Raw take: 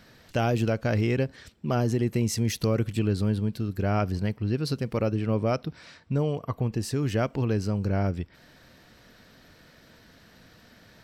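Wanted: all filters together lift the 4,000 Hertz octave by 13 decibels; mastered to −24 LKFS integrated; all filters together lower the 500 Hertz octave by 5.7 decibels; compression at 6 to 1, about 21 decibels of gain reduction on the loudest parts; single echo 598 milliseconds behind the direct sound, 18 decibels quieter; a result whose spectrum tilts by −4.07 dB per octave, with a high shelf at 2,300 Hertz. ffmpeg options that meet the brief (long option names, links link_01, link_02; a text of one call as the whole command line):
ffmpeg -i in.wav -af "equalizer=frequency=500:width_type=o:gain=-8,highshelf=frequency=2300:gain=9,equalizer=frequency=4000:width_type=o:gain=8,acompressor=threshold=-41dB:ratio=6,aecho=1:1:598:0.126,volume=20dB" out.wav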